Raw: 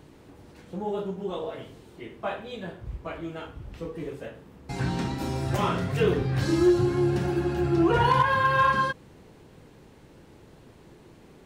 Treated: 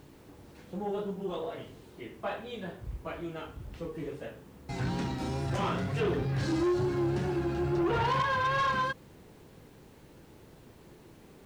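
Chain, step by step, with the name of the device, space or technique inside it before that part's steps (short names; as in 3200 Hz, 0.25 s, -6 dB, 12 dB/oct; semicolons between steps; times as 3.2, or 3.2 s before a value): compact cassette (soft clip -21.5 dBFS, distortion -12 dB; LPF 8800 Hz; wow and flutter; white noise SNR 36 dB); gain -2.5 dB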